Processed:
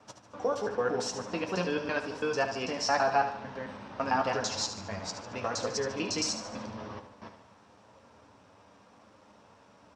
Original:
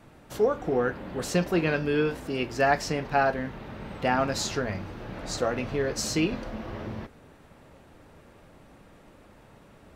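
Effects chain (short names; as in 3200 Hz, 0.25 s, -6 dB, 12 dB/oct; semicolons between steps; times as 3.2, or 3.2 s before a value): slices in reverse order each 0.111 s, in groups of 3; speaker cabinet 120–8000 Hz, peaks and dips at 160 Hz -9 dB, 350 Hz -8 dB, 990 Hz +7 dB, 2000 Hz -4 dB, 5500 Hz +9 dB; on a send: feedback echo 74 ms, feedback 50%, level -9.5 dB; on the sum: flange 0.88 Hz, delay 9.2 ms, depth 1.6 ms, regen -36%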